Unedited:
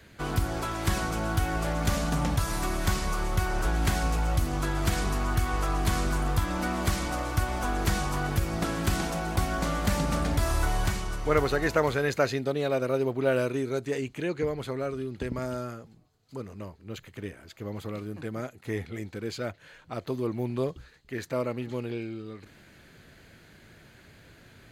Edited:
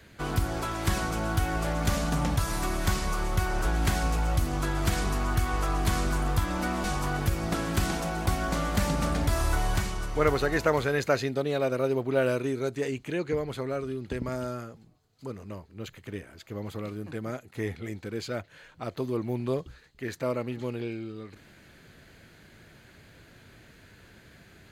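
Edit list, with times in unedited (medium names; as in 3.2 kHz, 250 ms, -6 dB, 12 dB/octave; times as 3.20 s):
6.84–7.94 s: delete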